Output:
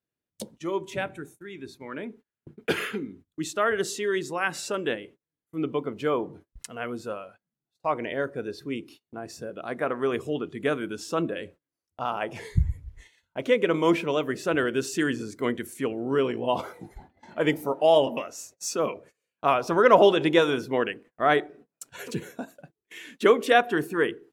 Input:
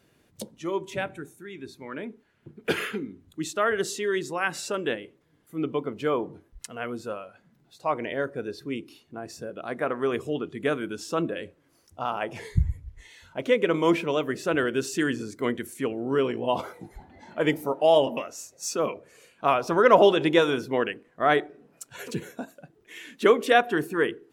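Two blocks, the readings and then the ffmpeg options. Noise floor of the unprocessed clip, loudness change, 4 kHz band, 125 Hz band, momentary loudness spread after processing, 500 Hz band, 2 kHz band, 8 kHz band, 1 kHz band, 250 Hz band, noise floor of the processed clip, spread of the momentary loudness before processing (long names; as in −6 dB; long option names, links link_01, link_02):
−65 dBFS, 0.0 dB, 0.0 dB, 0.0 dB, 20 LU, 0.0 dB, 0.0 dB, 0.0 dB, 0.0 dB, 0.0 dB, below −85 dBFS, 20 LU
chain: -af "agate=range=-28dB:threshold=-48dB:ratio=16:detection=peak"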